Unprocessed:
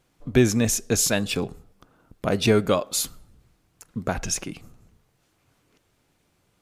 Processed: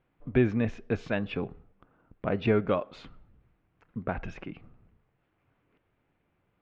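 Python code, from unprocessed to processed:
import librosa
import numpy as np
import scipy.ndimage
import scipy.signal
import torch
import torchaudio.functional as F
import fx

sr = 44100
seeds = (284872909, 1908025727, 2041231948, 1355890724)

y = scipy.signal.sosfilt(scipy.signal.butter(4, 2600.0, 'lowpass', fs=sr, output='sos'), x)
y = F.gain(torch.from_numpy(y), -5.5).numpy()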